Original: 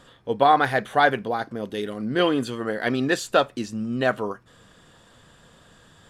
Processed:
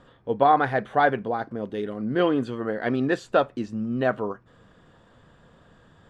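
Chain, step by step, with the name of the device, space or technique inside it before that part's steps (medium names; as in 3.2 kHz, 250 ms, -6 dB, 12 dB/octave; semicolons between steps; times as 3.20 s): through cloth (low-pass 9.2 kHz 12 dB/octave; treble shelf 2.9 kHz -16 dB)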